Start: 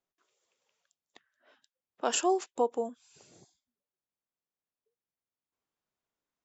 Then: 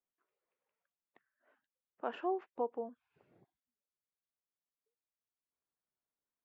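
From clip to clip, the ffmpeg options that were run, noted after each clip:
ffmpeg -i in.wav -af "lowpass=frequency=2200:width=0.5412,lowpass=frequency=2200:width=1.3066,volume=-8dB" out.wav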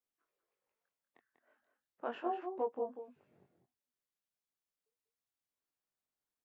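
ffmpeg -i in.wav -filter_complex "[0:a]asplit=2[link_01][link_02];[link_02]adelay=192.4,volume=-7dB,highshelf=frequency=4000:gain=-4.33[link_03];[link_01][link_03]amix=inputs=2:normalize=0,flanger=delay=19:depth=5.3:speed=0.37,volume=2dB" out.wav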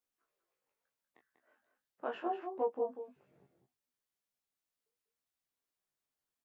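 ffmpeg -i in.wav -filter_complex "[0:a]asplit=2[link_01][link_02];[link_02]adelay=15,volume=-6dB[link_03];[link_01][link_03]amix=inputs=2:normalize=0" out.wav

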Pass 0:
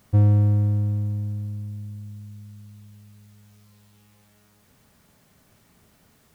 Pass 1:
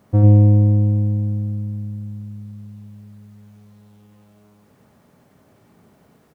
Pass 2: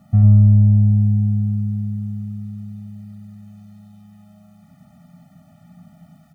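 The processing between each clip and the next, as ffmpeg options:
ffmpeg -i in.wav -af "highpass=frequency=240:poles=1,tiltshelf=frequency=1400:gain=8.5,aecho=1:1:96:0.668,volume=1.5dB" out.wav
ffmpeg -i in.wav -af "acontrast=79,equalizer=frequency=170:width=4.6:gain=13,afftfilt=real='re*eq(mod(floor(b*sr/1024/290),2),0)':imag='im*eq(mod(floor(b*sr/1024/290),2),0)':win_size=1024:overlap=0.75,volume=-4dB" out.wav

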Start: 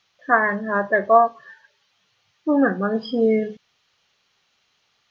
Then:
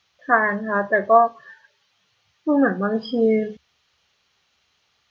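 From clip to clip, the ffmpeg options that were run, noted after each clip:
ffmpeg -i in.wav -af "equalizer=frequency=72:width=3.6:gain=14" out.wav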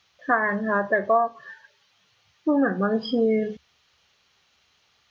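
ffmpeg -i in.wav -af "acompressor=threshold=-22dB:ratio=2.5,volume=2dB" out.wav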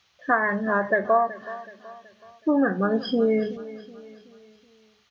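ffmpeg -i in.wav -af "aecho=1:1:375|750|1125|1500:0.15|0.0673|0.0303|0.0136" out.wav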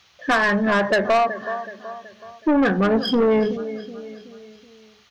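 ffmpeg -i in.wav -af "asoftclip=type=tanh:threshold=-22dB,volume=8.5dB" out.wav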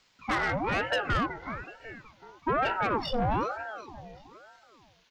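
ffmpeg -i in.wav -af "aeval=exprs='val(0)*sin(2*PI*700*n/s+700*0.65/1.1*sin(2*PI*1.1*n/s))':channel_layout=same,volume=-7dB" out.wav

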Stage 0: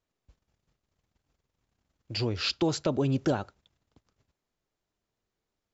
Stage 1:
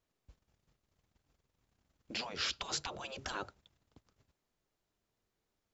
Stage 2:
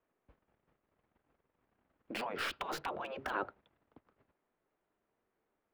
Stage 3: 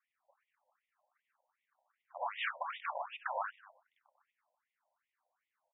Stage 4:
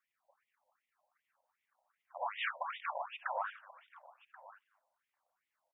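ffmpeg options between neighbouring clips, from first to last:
ffmpeg -i in.wav -af "afftfilt=real='re*lt(hypot(re,im),0.0708)':imag='im*lt(hypot(re,im),0.0708)':win_size=1024:overlap=0.75" out.wav
ffmpeg -i in.wav -filter_complex "[0:a]acrossover=split=210 2300:gain=0.224 1 0.2[link_01][link_02][link_03];[link_01][link_02][link_03]amix=inputs=3:normalize=0,acrossover=split=3800[link_04][link_05];[link_05]acrusher=bits=6:dc=4:mix=0:aa=0.000001[link_06];[link_04][link_06]amix=inputs=2:normalize=0,volume=5.5dB" out.wav
ffmpeg -i in.wav -filter_complex "[0:a]asplit=2[link_01][link_02];[link_02]asplit=4[link_03][link_04][link_05][link_06];[link_03]adelay=94,afreqshift=31,volume=-7.5dB[link_07];[link_04]adelay=188,afreqshift=62,volume=-16.4dB[link_08];[link_05]adelay=282,afreqshift=93,volume=-25.2dB[link_09];[link_06]adelay=376,afreqshift=124,volume=-34.1dB[link_10];[link_07][link_08][link_09][link_10]amix=inputs=4:normalize=0[link_11];[link_01][link_11]amix=inputs=2:normalize=0,afftfilt=real='re*between(b*sr/1024,690*pow(2700/690,0.5+0.5*sin(2*PI*2.6*pts/sr))/1.41,690*pow(2700/690,0.5+0.5*sin(2*PI*2.6*pts/sr))*1.41)':imag='im*between(b*sr/1024,690*pow(2700/690,0.5+0.5*sin(2*PI*2.6*pts/sr))/1.41,690*pow(2700/690,0.5+0.5*sin(2*PI*2.6*pts/sr))*1.41)':win_size=1024:overlap=0.75,volume=4dB" out.wav
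ffmpeg -i in.wav -af "aecho=1:1:1082:0.119" out.wav

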